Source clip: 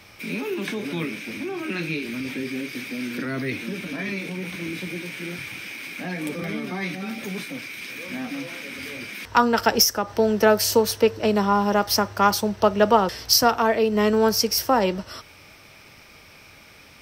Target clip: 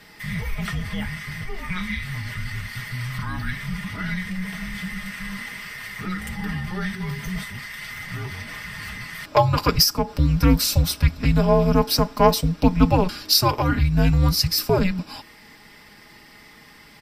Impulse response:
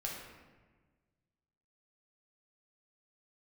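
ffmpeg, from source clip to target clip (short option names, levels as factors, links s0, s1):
-af "aecho=1:1:5:0.66,afreqshift=-370,volume=0.891"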